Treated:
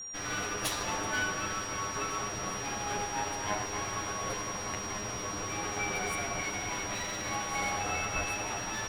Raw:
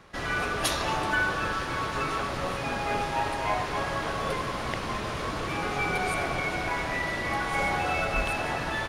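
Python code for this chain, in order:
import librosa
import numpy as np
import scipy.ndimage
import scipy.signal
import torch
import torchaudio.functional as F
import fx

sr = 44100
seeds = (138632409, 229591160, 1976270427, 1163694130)

y = fx.lower_of_two(x, sr, delay_ms=9.9)
y = y + 10.0 ** (-35.0 / 20.0) * np.sin(2.0 * np.pi * 5700.0 * np.arange(len(y)) / sr)
y = y * librosa.db_to_amplitude(-4.5)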